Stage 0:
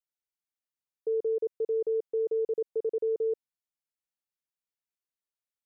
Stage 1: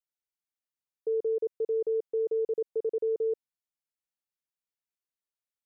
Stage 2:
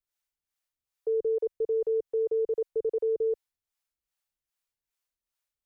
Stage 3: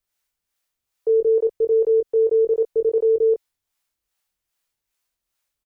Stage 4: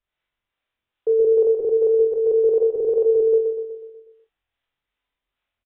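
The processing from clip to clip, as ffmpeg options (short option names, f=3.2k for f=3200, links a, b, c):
-af anull
-filter_complex "[0:a]equalizer=f=190:w=0.66:g=-13.5,acrossover=split=450[a][b];[a]aeval=exprs='val(0)*(1-0.7/2+0.7/2*cos(2*PI*2.5*n/s))':c=same[c];[b]aeval=exprs='val(0)*(1-0.7/2-0.7/2*cos(2*PI*2.5*n/s))':c=same[d];[c][d]amix=inputs=2:normalize=0,lowshelf=f=240:g=11,volume=8dB"
-filter_complex "[0:a]asplit=2[a][b];[b]adelay=22,volume=-6dB[c];[a][c]amix=inputs=2:normalize=0,volume=8dB"
-filter_complex "[0:a]asplit=2[a][b];[b]aecho=0:1:123|246|369|492|615|738|861:0.501|0.271|0.146|0.0789|0.0426|0.023|0.0124[c];[a][c]amix=inputs=2:normalize=0,aresample=8000,aresample=44100,asplit=2[d][e];[e]aecho=0:1:44|69:0.562|0.178[f];[d][f]amix=inputs=2:normalize=0"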